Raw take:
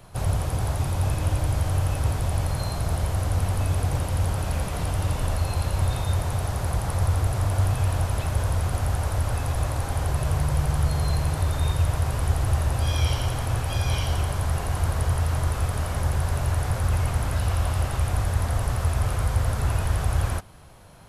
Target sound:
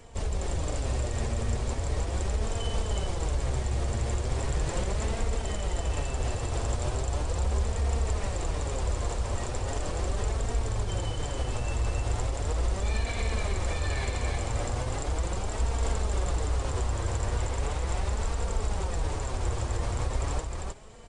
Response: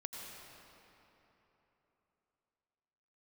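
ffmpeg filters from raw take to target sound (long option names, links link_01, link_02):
-af "alimiter=limit=-20dB:level=0:latency=1:release=59,asetrate=32097,aresample=44100,atempo=1.37395,aecho=1:1:310:0.668,flanger=delay=4.3:depth=4.4:regen=47:speed=0.38:shape=sinusoidal,volume=3.5dB"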